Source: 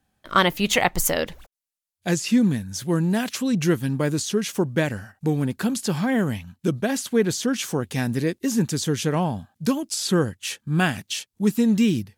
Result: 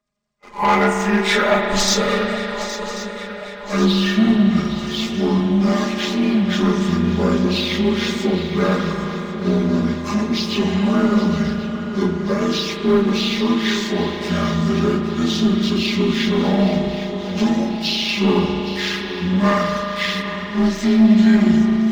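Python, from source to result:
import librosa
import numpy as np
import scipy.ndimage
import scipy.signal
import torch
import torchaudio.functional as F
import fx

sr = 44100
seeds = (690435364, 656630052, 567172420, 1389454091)

y = fx.partial_stretch(x, sr, pct=82)
y = fx.hum_notches(y, sr, base_hz=60, count=7)
y = fx.stretch_grains(y, sr, factor=1.8, grain_ms=22.0)
y = fx.leveller(y, sr, passes=2)
y = fx.echo_swing(y, sr, ms=1087, ratio=3, feedback_pct=53, wet_db=-13)
y = fx.rev_spring(y, sr, rt60_s=4.0, pass_ms=(36,), chirp_ms=30, drr_db=3.0)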